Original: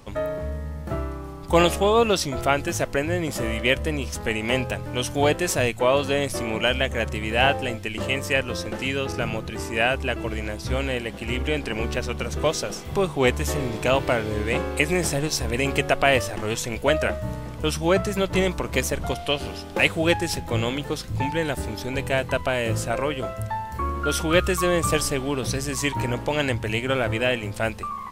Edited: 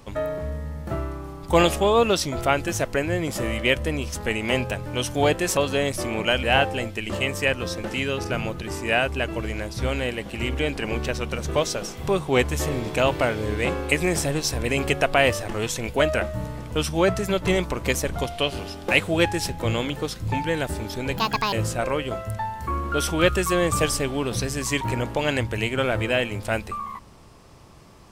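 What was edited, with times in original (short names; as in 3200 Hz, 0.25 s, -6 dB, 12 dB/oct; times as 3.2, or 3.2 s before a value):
5.57–5.93 cut
6.79–7.31 cut
22.05–22.64 speed 166%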